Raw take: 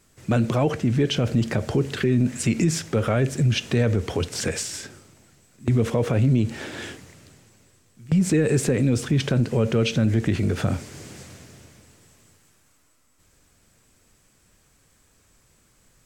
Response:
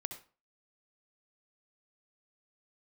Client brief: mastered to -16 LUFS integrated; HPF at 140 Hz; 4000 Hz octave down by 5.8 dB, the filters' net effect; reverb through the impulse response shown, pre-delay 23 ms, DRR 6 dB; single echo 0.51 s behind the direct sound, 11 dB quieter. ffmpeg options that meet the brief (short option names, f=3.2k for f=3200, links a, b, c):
-filter_complex "[0:a]highpass=140,equalizer=f=4k:t=o:g=-8.5,aecho=1:1:510:0.282,asplit=2[a][b];[1:a]atrim=start_sample=2205,adelay=23[c];[b][c]afir=irnorm=-1:irlink=0,volume=-5dB[d];[a][d]amix=inputs=2:normalize=0,volume=7.5dB"